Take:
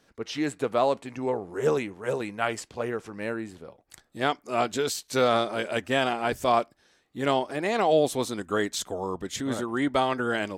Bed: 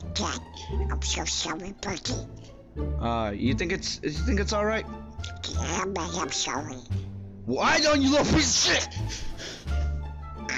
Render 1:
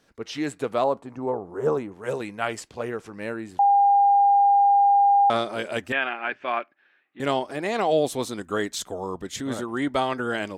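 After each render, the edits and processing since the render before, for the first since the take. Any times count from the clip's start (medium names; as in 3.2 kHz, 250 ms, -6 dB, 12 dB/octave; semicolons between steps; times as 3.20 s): 0.84–1.92 s: resonant high shelf 1.6 kHz -10 dB, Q 1.5; 3.59–5.30 s: bleep 804 Hz -14 dBFS; 5.92–7.20 s: cabinet simulation 410–2800 Hz, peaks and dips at 470 Hz -9 dB, 680 Hz -5 dB, 970 Hz -4 dB, 1.6 kHz +6 dB, 2.5 kHz +6 dB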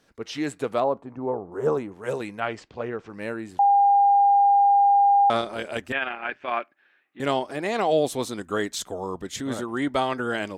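0.80–1.52 s: low-pass 1.5 kHz 6 dB/octave; 2.40–3.10 s: distance through air 160 m; 5.40–6.52 s: AM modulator 150 Hz, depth 30%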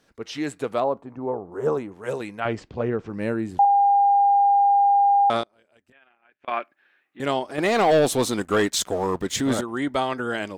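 2.45–3.65 s: bass shelf 440 Hz +11 dB; 5.43–6.48 s: inverted gate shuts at -29 dBFS, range -30 dB; 7.58–9.61 s: waveshaping leveller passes 2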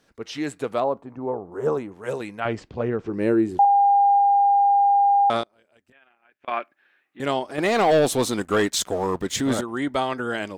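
3.06–4.19 s: peaking EQ 370 Hz +12.5 dB 0.52 oct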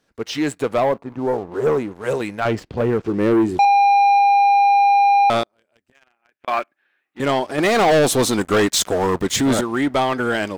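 waveshaping leveller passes 2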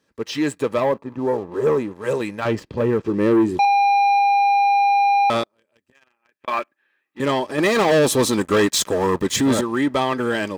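comb of notches 720 Hz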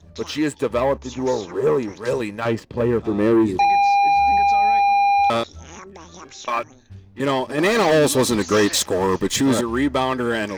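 add bed -10.5 dB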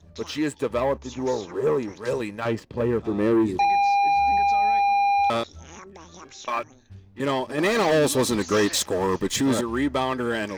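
trim -4 dB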